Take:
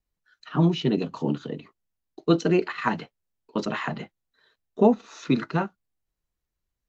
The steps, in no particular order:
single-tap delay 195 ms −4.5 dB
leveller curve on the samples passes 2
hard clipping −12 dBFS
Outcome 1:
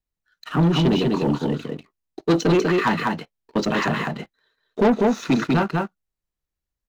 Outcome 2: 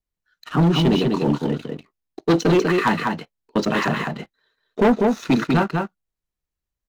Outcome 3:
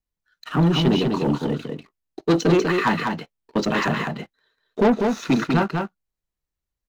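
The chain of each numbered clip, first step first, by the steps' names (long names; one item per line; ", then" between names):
single-tap delay, then hard clipping, then leveller curve on the samples
leveller curve on the samples, then single-tap delay, then hard clipping
hard clipping, then leveller curve on the samples, then single-tap delay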